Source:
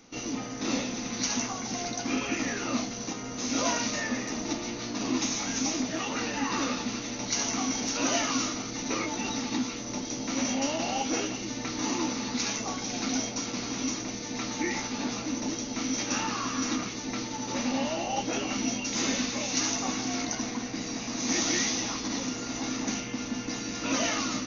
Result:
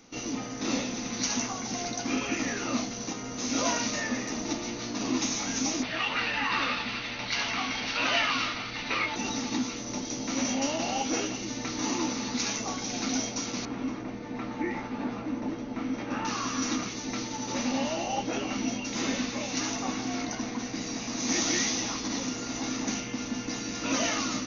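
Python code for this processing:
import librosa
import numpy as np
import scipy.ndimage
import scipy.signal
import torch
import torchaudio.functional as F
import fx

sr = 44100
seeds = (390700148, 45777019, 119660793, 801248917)

y = fx.curve_eq(x, sr, hz=(100.0, 290.0, 1600.0, 2700.0, 4600.0, 7000.0), db=(0, -8, 6, 8, 1, -19), at=(5.83, 9.16))
y = fx.lowpass(y, sr, hz=1800.0, slope=12, at=(13.65, 16.25))
y = fx.lowpass(y, sr, hz=3600.0, slope=6, at=(18.16, 20.59))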